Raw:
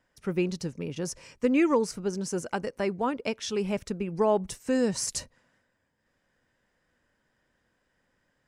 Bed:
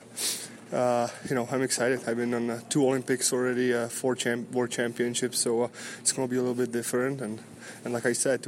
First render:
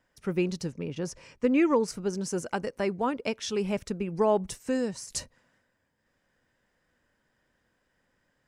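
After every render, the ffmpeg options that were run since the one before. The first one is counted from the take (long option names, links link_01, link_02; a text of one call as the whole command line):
ffmpeg -i in.wav -filter_complex "[0:a]asettb=1/sr,asplit=3[link_01][link_02][link_03];[link_01]atrim=end=0.724[link_04];[link_02]atrim=start=0.72:end=1.88,asetpts=PTS-STARTPTS,afade=type=in:duration=0.004:curve=qsin,afade=type=out:start_time=1.156:duration=0.004:curve=qsin,highshelf=frequency=6800:gain=-11[link_05];[link_03]atrim=start=1.876[link_06];[link_04][link_05]acrossfade=duration=0.004:curve1=hsin:curve2=qsin[link_07];[link_07][link_06]acrossfade=duration=0.004:curve1=qsin:curve2=hsin,asplit=2[link_08][link_09];[link_08]atrim=end=5.1,asetpts=PTS-STARTPTS,afade=type=out:start_time=4.6:duration=0.5:silence=0.177828[link_10];[link_09]atrim=start=5.1,asetpts=PTS-STARTPTS,afade=type=in:duration=0.004:curve=hsin:silence=0.177828[link_11];[link_10][link_11]concat=n=2:v=0:a=1" out.wav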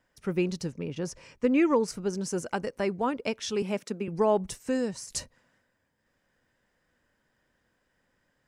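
ffmpeg -i in.wav -filter_complex "[0:a]asettb=1/sr,asplit=3[link_01][link_02][link_03];[link_01]atrim=end=3.624[link_04];[link_02]atrim=start=3.62:end=4.08,asetpts=PTS-STARTPTS,afade=type=in:duration=0.004:curve=qsin,afade=type=out:start_time=0.456:duration=0.004:curve=qsin,highpass=frequency=190:width=0.5412,highpass=frequency=190:width=1.3066[link_05];[link_03]atrim=start=4.076[link_06];[link_04][link_05]acrossfade=duration=0.004:curve1=hsin:curve2=qsin[link_07];[link_07][link_06]acrossfade=duration=0.004:curve1=qsin:curve2=hsin" out.wav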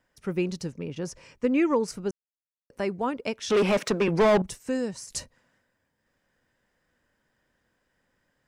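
ffmpeg -i in.wav -filter_complex "[0:a]asettb=1/sr,asplit=3[link_01][link_02][link_03];[link_01]atrim=end=3.504[link_04];[link_02]atrim=start=3.5:end=4.42,asetpts=PTS-STARTPTS,afade=type=in:duration=0.004:curve=qsin,afade=type=out:start_time=0.916:duration=0.004:curve=qsin,asplit=2[link_05][link_06];[link_06]highpass=frequency=720:poles=1,volume=28dB,asoftclip=type=tanh:threshold=-13dB[link_07];[link_05][link_07]amix=inputs=2:normalize=0,lowpass=frequency=2500:poles=1,volume=-6dB[link_08];[link_03]atrim=start=4.416[link_09];[link_04][link_08]acrossfade=duration=0.004:curve1=hsin:curve2=qsin[link_10];[link_10][link_09]acrossfade=duration=0.004:curve1=qsin:curve2=hsin,asplit=3[link_11][link_12][link_13];[link_11]atrim=end=2.11,asetpts=PTS-STARTPTS,afade=type=out:start_time=2.106:duration=0.004:curve=hsin[link_14];[link_12]atrim=start=2.11:end=2.7,asetpts=PTS-STARTPTS,volume=0[link_15];[link_13]atrim=start=2.7,asetpts=PTS-STARTPTS,afade=type=in:duration=0.004:curve=hsin[link_16];[link_14][link_15][link_16]concat=n=3:v=0:a=1" out.wav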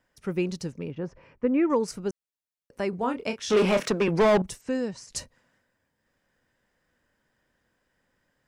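ffmpeg -i in.wav -filter_complex "[0:a]asettb=1/sr,asplit=3[link_01][link_02][link_03];[link_01]atrim=end=0.914[link_04];[link_02]atrim=start=0.91:end=1.7,asetpts=PTS-STARTPTS,afade=type=in:duration=0.004:curve=qsin,afade=type=out:start_time=0.786:duration=0.004:curve=qsin,lowpass=1800[link_05];[link_03]atrim=start=1.696[link_06];[link_04][link_05]acrossfade=duration=0.004:curve1=hsin:curve2=qsin[link_07];[link_07][link_06]acrossfade=duration=0.004:curve1=qsin:curve2=hsin,asettb=1/sr,asplit=3[link_08][link_09][link_10];[link_08]atrim=end=2.904[link_11];[link_09]atrim=start=2.9:end=3.88,asetpts=PTS-STARTPTS,afade=type=in:duration=0.004:curve=qsin,afade=type=out:start_time=0.976:duration=0.004:curve=qsin,asplit=2[link_12][link_13];[link_13]adelay=28,volume=-7dB[link_14];[link_12][link_14]amix=inputs=2:normalize=0,atrim=end_sample=43218[link_15];[link_10]atrim=start=3.876[link_16];[link_11][link_15]acrossfade=duration=0.004:curve1=hsin:curve2=qsin[link_17];[link_17][link_16]acrossfade=duration=0.004:curve1=qsin:curve2=hsin,asettb=1/sr,asplit=3[link_18][link_19][link_20];[link_18]atrim=end=4.614[link_21];[link_19]atrim=start=4.61:end=5.16,asetpts=PTS-STARTPTS,afade=type=in:duration=0.004:curve=qsin,afade=type=out:start_time=0.546:duration=0.004:curve=qsin,lowpass=5700[link_22];[link_20]atrim=start=5.156[link_23];[link_21][link_22]acrossfade=duration=0.004:curve1=hsin:curve2=qsin[link_24];[link_24][link_23]acrossfade=duration=0.004:curve1=qsin:curve2=hsin" out.wav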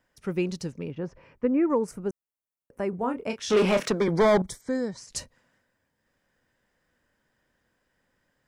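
ffmpeg -i in.wav -filter_complex "[0:a]asettb=1/sr,asplit=3[link_01][link_02][link_03];[link_01]atrim=end=1.474[link_04];[link_02]atrim=start=1.47:end=3.3,asetpts=PTS-STARTPTS,afade=type=in:duration=0.004:curve=qsin,afade=type=out:start_time=1.826:duration=0.004:curve=qsin,equalizer=frequency=4200:width=0.96:gain=-15[link_05];[link_03]atrim=start=3.296[link_06];[link_04][link_05]acrossfade=duration=0.004:curve1=hsin:curve2=qsin[link_07];[link_07][link_06]acrossfade=duration=0.004:curve1=qsin:curve2=hsin,asettb=1/sr,asplit=3[link_08][link_09][link_10];[link_08]atrim=end=3.954[link_11];[link_09]atrim=start=3.95:end=4.98,asetpts=PTS-STARTPTS,afade=type=in:duration=0.004:curve=qsin,afade=type=out:start_time=1.026:duration=0.004:curve=qsin,asuperstop=centerf=2700:order=12:qfactor=3.9[link_12];[link_10]atrim=start=4.976[link_13];[link_11][link_12]acrossfade=duration=0.004:curve1=hsin:curve2=qsin[link_14];[link_14][link_13]acrossfade=duration=0.004:curve1=qsin:curve2=hsin" out.wav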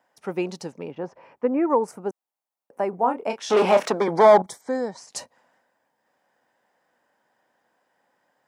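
ffmpeg -i in.wav -af "highpass=220,equalizer=frequency=800:width_type=o:width=0.9:gain=13" out.wav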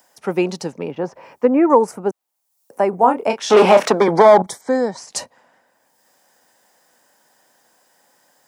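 ffmpeg -i in.wav -filter_complex "[0:a]acrossover=split=130|4900[link_01][link_02][link_03];[link_03]acompressor=mode=upward:threshold=-55dB:ratio=2.5[link_04];[link_01][link_02][link_04]amix=inputs=3:normalize=0,alimiter=level_in=8dB:limit=-1dB:release=50:level=0:latency=1" out.wav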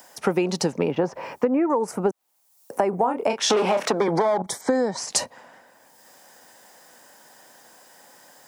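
ffmpeg -i in.wav -filter_complex "[0:a]asplit=2[link_01][link_02];[link_02]alimiter=limit=-12.5dB:level=0:latency=1:release=97,volume=3dB[link_03];[link_01][link_03]amix=inputs=2:normalize=0,acompressor=threshold=-18dB:ratio=12" out.wav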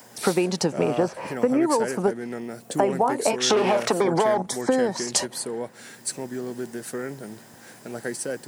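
ffmpeg -i in.wav -i bed.wav -filter_complex "[1:a]volume=-4.5dB[link_01];[0:a][link_01]amix=inputs=2:normalize=0" out.wav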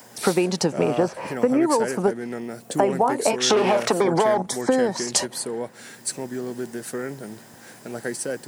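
ffmpeg -i in.wav -af "volume=1.5dB" out.wav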